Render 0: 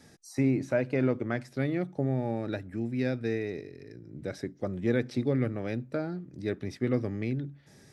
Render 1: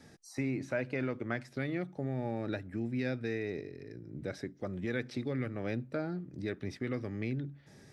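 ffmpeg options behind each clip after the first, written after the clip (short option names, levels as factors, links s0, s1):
-filter_complex "[0:a]highshelf=f=5800:g=-7,acrossover=split=1200[s0][s1];[s0]alimiter=level_in=1.33:limit=0.0631:level=0:latency=1:release=322,volume=0.75[s2];[s2][s1]amix=inputs=2:normalize=0"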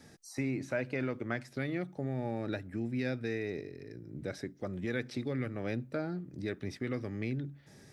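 -af "highshelf=f=7000:g=5.5"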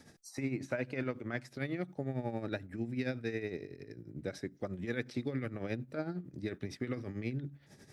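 -af "tremolo=f=11:d=0.65,volume=1.12"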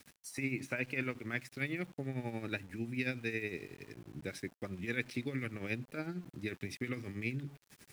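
-af "equalizer=f=630:t=o:w=0.67:g=-6,equalizer=f=2500:t=o:w=0.67:g=11,equalizer=f=10000:t=o:w=0.67:g=11,aeval=exprs='val(0)*gte(abs(val(0)),0.00224)':c=same,volume=0.841"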